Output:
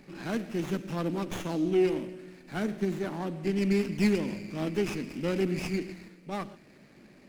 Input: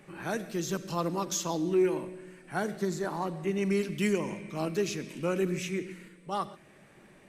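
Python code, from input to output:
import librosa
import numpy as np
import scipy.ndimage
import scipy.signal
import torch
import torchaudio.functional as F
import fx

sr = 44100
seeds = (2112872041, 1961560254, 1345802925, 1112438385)

y = fx.graphic_eq_15(x, sr, hz=(250, 1000, 2500), db=(9, -6, 9))
y = fx.running_max(y, sr, window=9)
y = y * librosa.db_to_amplitude(-1.5)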